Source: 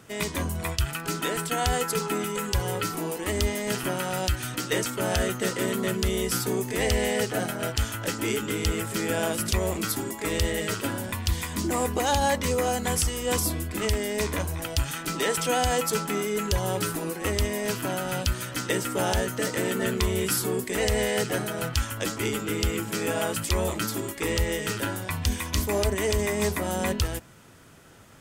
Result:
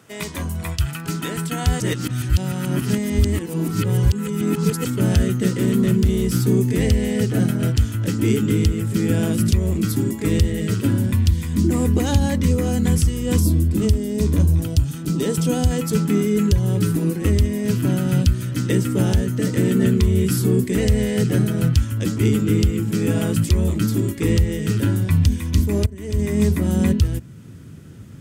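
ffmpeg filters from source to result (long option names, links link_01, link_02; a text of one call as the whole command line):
ffmpeg -i in.wav -filter_complex "[0:a]asettb=1/sr,asplit=3[link_01][link_02][link_03];[link_01]atrim=end=5.484[link_04];[link_02]atrim=start=5.48:end=6.48,asetpts=PTS-STARTPTS,afade=type=in:duration=0.004:curve=qsin,afade=type=out:start_time=0.996:duration=0.004:curve=qsin,volume=22.5dB,asoftclip=hard,volume=-22.5dB[link_05];[link_03]atrim=start=6.476[link_06];[link_04][link_05]acrossfade=duration=0.004:curve1=hsin:curve2=qsin[link_07];[link_07][link_06]acrossfade=duration=0.004:curve1=qsin:curve2=hsin,asettb=1/sr,asplit=3[link_08][link_09][link_10];[link_08]atrim=end=13.414[link_11];[link_09]atrim=start=13.41:end=15.71,asetpts=PTS-STARTPTS,afade=type=in:duration=0.004:curve=qsin,afade=type=out:start_time=2.296:duration=0.004:curve=qsin,equalizer=frequency=2000:width=1.3:gain=-8[link_12];[link_10]atrim=start=15.706[link_13];[link_11][link_12]acrossfade=duration=0.004:curve1=hsin:curve2=qsin[link_14];[link_14][link_13]acrossfade=duration=0.004:curve1=qsin:curve2=hsin,asplit=4[link_15][link_16][link_17][link_18];[link_15]atrim=end=1.802[link_19];[link_16]atrim=start=1.798:end=4.852,asetpts=PTS-STARTPTS,areverse[link_20];[link_17]atrim=start=4.848:end=25.86,asetpts=PTS-STARTPTS,afade=type=out:start_time=21.008:duration=0.004:curve=hsin:silence=0.0630957[link_21];[link_18]atrim=start=25.86,asetpts=PTS-STARTPTS,afade=type=in:duration=0.66:silence=0.0630957[link_22];[link_19][link_20]acrossfade=duration=0.004:curve1=hsin:curve2=hsin[link_23];[link_21][link_22]concat=n=2:v=0:a=1[link_24];[link_23][link_24]acrossfade=duration=0.004:curve1=hsin:curve2=hsin,highpass=90,asubboost=boost=11.5:cutoff=220,alimiter=limit=-7dB:level=0:latency=1:release=493" out.wav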